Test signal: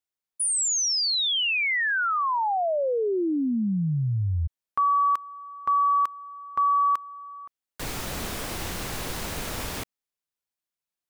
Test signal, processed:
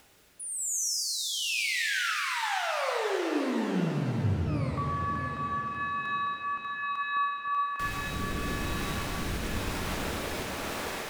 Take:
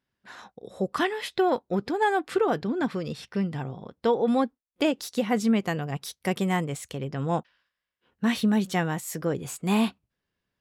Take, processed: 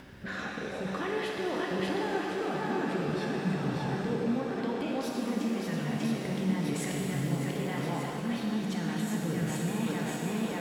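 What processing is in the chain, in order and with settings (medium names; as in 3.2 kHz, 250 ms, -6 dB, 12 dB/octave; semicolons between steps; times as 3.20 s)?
in parallel at +0.5 dB: upward compressor, threshold -24 dBFS; on the sum: thinning echo 592 ms, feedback 55%, high-pass 280 Hz, level -6 dB; dynamic bell 550 Hz, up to -6 dB, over -33 dBFS, Q 1.2; reverse; compression, threshold -26 dBFS; reverse; treble shelf 3.2 kHz -10 dB; rotary cabinet horn 1 Hz; peak limiter -29.5 dBFS; pitch-shifted reverb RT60 3.3 s, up +7 st, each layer -8 dB, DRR -2 dB; trim +1.5 dB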